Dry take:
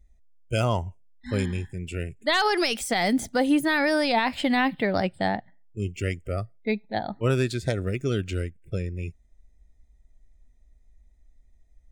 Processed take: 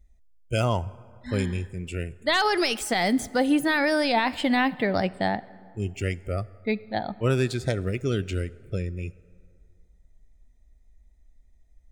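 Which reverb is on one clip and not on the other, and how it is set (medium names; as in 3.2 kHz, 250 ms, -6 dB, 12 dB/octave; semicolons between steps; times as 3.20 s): plate-style reverb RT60 2.3 s, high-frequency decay 0.5×, DRR 19 dB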